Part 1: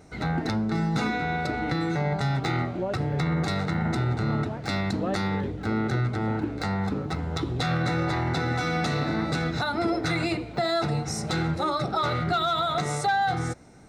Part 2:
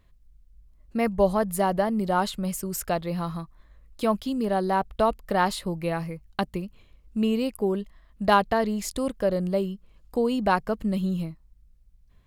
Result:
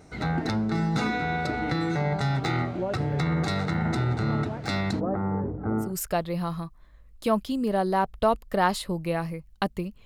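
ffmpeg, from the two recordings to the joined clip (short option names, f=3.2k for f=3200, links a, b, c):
-filter_complex "[0:a]asplit=3[a][b][c];[a]afade=t=out:st=4.99:d=0.02[d];[b]lowpass=f=1.2k:w=0.5412,lowpass=f=1.2k:w=1.3066,afade=t=in:st=4.99:d=0.02,afade=t=out:st=5.94:d=0.02[e];[c]afade=t=in:st=5.94:d=0.02[f];[d][e][f]amix=inputs=3:normalize=0,apad=whole_dur=10.05,atrim=end=10.05,atrim=end=5.94,asetpts=PTS-STARTPTS[g];[1:a]atrim=start=2.55:end=6.82,asetpts=PTS-STARTPTS[h];[g][h]acrossfade=d=0.16:c1=tri:c2=tri"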